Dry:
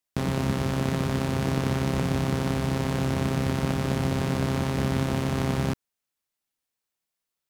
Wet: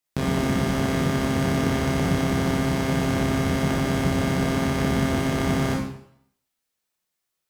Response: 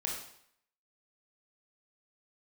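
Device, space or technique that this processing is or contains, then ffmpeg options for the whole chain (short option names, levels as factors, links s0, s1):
bathroom: -filter_complex "[1:a]atrim=start_sample=2205[s0];[0:a][s0]afir=irnorm=-1:irlink=0,volume=1.26"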